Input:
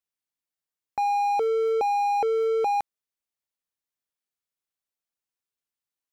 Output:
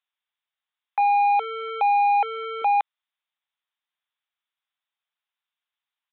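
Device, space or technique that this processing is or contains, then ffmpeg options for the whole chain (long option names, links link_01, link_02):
musical greeting card: -filter_complex "[0:a]aresample=8000,aresample=44100,highpass=frequency=790:width=0.5412,highpass=frequency=790:width=1.3066,equalizer=frequency=3600:width_type=o:width=0.32:gain=5,asettb=1/sr,asplit=3[link_01][link_02][link_03];[link_01]atrim=end=1.004[link_04];[link_02]atrim=start=1:end=2.62,asetpts=PTS-STARTPTS,afade=type=in:duration=0.004:curve=qsin,afade=type=out:start_time=1.616:duration=0.004:curve=qsin,bass=frequency=250:gain=15,treble=frequency=4000:gain=6[link_05];[link_03]atrim=start=2.616[link_06];[link_04][link_05]acrossfade=duration=0.004:curve1=hsin:curve2=qsin[link_07];[link_07][link_06]acrossfade=duration=0.004:curve1=qsin:curve2=hsin,volume=7dB"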